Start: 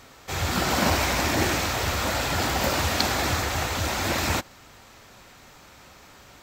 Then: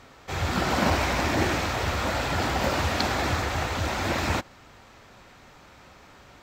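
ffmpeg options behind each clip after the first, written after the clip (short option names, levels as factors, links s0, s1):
-af "lowpass=f=3100:p=1"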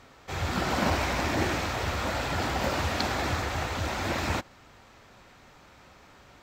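-af "aeval=exprs='0.422*(cos(1*acos(clip(val(0)/0.422,-1,1)))-cos(1*PI/2))+0.00668*(cos(4*acos(clip(val(0)/0.422,-1,1)))-cos(4*PI/2))':c=same,volume=0.708"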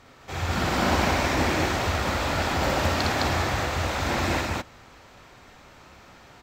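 -af "aecho=1:1:58.31|209.9:0.794|1"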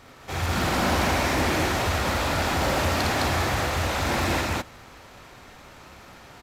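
-af "asoftclip=type=tanh:threshold=0.0841,acrusher=bits=3:mode=log:mix=0:aa=0.000001,aresample=32000,aresample=44100,volume=1.41"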